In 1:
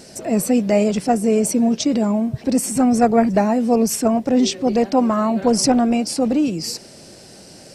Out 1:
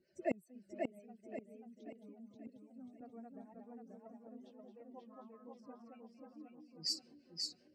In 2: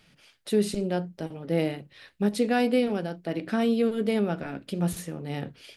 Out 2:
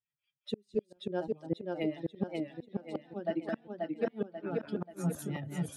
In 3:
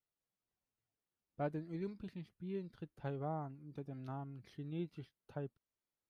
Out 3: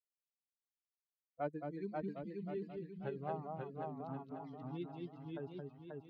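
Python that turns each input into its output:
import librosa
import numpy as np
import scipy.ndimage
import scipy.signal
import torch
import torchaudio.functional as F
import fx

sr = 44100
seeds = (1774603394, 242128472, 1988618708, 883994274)

p1 = fx.bin_expand(x, sr, power=2.0)
p2 = p1 + 10.0 ** (-4.0 / 20.0) * np.pad(p1, (int(221 * sr / 1000.0), 0))[:len(p1)]
p3 = fx.gate_flip(p2, sr, shuts_db=-21.0, range_db=-40)
p4 = fx.high_shelf(p3, sr, hz=3600.0, db=-7.5)
p5 = fx.env_lowpass(p4, sr, base_hz=2200.0, full_db=-35.5)
p6 = fx.highpass(p5, sr, hz=280.0, slope=6)
p7 = fx.peak_eq(p6, sr, hz=1300.0, db=-3.5, octaves=2.8)
p8 = fx.rider(p7, sr, range_db=3, speed_s=0.5)
p9 = p7 + (p8 * 10.0 ** (-1.0 / 20.0))
p10 = fx.harmonic_tremolo(p9, sr, hz=5.3, depth_pct=70, crossover_hz=400.0)
p11 = fx.echo_warbled(p10, sr, ms=536, feedback_pct=42, rate_hz=2.8, cents=88, wet_db=-3.0)
y = p11 * 10.0 ** (3.5 / 20.0)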